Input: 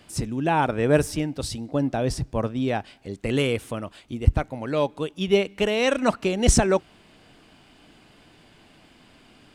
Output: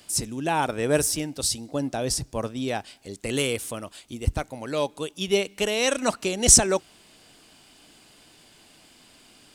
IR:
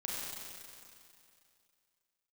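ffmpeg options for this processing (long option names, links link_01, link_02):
-af "bass=frequency=250:gain=-4,treble=frequency=4000:gain=14,volume=-2.5dB"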